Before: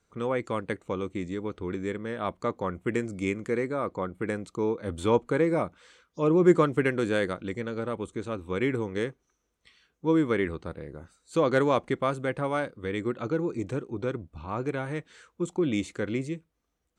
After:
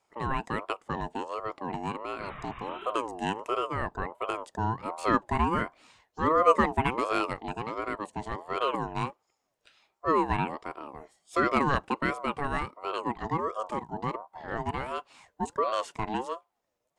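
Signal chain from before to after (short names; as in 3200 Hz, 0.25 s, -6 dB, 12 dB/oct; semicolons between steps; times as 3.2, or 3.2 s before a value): spectral repair 2.23–2.88, 450–3200 Hz both; ring modulator with a swept carrier 700 Hz, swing 25%, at 1.4 Hz; gain +1 dB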